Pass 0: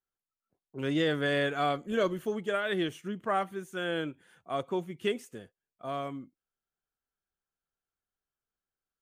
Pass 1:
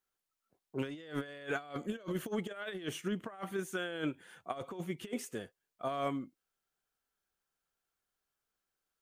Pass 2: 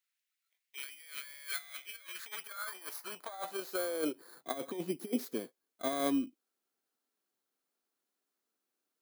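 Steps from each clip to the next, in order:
low shelf 250 Hz -6 dB; negative-ratio compressor -37 dBFS, ratio -0.5
FFT order left unsorted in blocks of 16 samples; high-pass sweep 2100 Hz -> 270 Hz, 1.94–4.56

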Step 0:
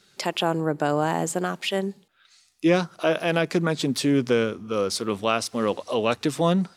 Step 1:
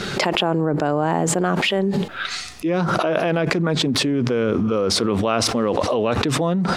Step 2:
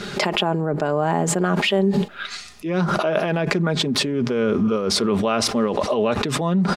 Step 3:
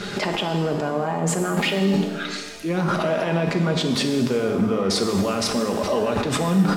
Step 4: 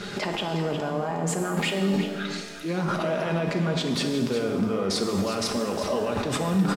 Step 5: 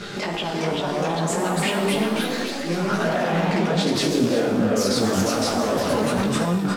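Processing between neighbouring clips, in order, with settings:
LPF 1500 Hz 6 dB/oct; fast leveller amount 100%; gain -3 dB
comb 4.9 ms, depth 39%; upward expander 1.5:1, over -30 dBFS
limiter -14.5 dBFS, peak gain reduction 10 dB; shimmer reverb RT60 1.3 s, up +7 st, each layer -8 dB, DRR 4.5 dB
echo 0.361 s -10.5 dB; gain -4.5 dB
chorus 2.6 Hz, delay 17 ms, depth 4.7 ms; echoes that change speed 0.434 s, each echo +2 st, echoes 3; gain +5 dB

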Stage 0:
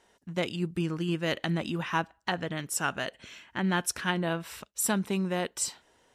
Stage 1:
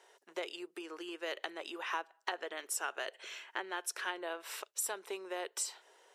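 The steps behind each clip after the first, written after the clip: compressor, threshold -35 dBFS, peak gain reduction 12 dB; elliptic high-pass 380 Hz, stop band 70 dB; gain +2 dB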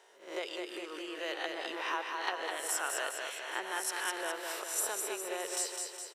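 spectral swells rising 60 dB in 0.47 s; on a send: feedback echo 0.206 s, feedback 55%, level -4.5 dB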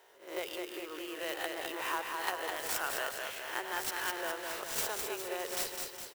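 clock jitter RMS 0.03 ms

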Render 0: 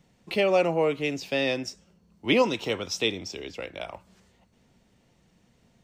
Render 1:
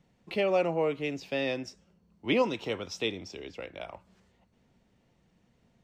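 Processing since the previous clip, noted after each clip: high shelf 4700 Hz -8.5 dB; gain -4 dB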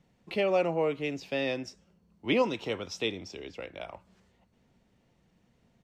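downsampling 32000 Hz

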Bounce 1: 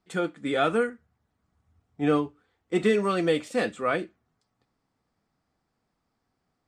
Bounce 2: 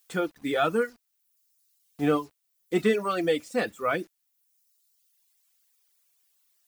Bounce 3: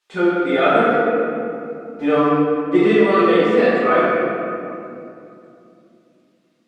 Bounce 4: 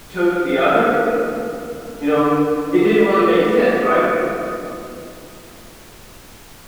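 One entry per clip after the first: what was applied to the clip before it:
bit-crush 8-bit; added noise blue -66 dBFS; reverb removal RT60 1.4 s
LPF 6500 Hz 12 dB/oct; tone controls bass -7 dB, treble -10 dB; reverb RT60 2.7 s, pre-delay 5 ms, DRR -10.5 dB; gain +1.5 dB
added noise pink -41 dBFS

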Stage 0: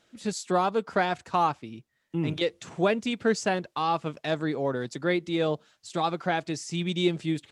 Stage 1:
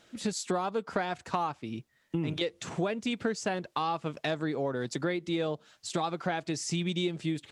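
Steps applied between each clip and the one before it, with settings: compressor, threshold -33 dBFS, peak gain reduction 14 dB; gain +5 dB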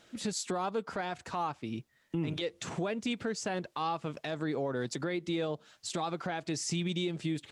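limiter -24 dBFS, peak gain reduction 9 dB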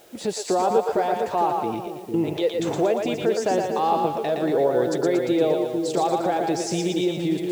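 added noise white -60 dBFS; band shelf 540 Hz +10.5 dB; split-band echo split 460 Hz, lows 0.454 s, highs 0.116 s, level -3.5 dB; gain +3 dB

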